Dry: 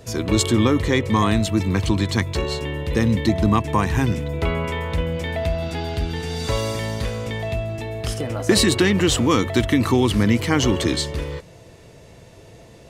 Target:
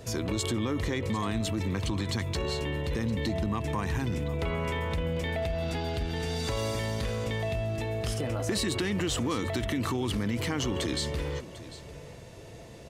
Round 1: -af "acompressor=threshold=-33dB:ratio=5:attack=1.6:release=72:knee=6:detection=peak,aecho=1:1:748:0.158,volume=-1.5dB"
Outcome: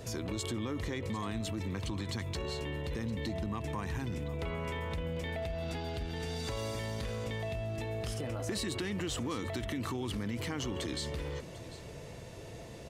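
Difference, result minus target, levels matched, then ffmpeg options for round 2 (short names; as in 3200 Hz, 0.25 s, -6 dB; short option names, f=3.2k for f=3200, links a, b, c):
compressor: peak gain reduction +6.5 dB
-af "acompressor=threshold=-25dB:ratio=5:attack=1.6:release=72:knee=6:detection=peak,aecho=1:1:748:0.158,volume=-1.5dB"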